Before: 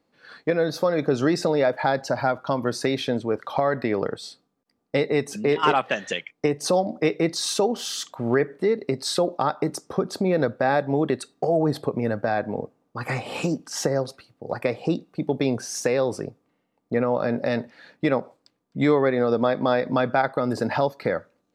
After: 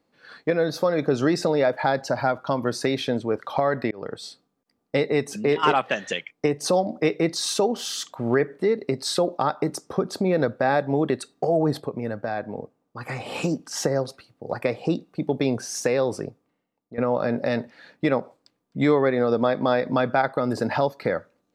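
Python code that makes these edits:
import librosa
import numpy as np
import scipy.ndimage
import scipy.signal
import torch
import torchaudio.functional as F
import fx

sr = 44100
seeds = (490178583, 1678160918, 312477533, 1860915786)

y = fx.edit(x, sr, fx.fade_in_span(start_s=3.91, length_s=0.31),
    fx.clip_gain(start_s=11.8, length_s=1.4, db=-4.5),
    fx.fade_out_to(start_s=16.24, length_s=0.74, floor_db=-17.0), tone=tone)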